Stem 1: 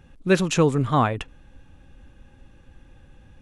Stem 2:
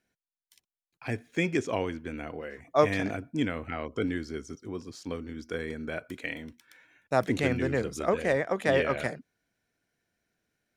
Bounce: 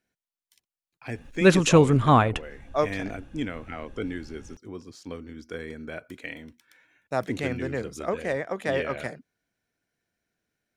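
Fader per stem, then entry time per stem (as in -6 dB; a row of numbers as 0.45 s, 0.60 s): +2.0 dB, -2.0 dB; 1.15 s, 0.00 s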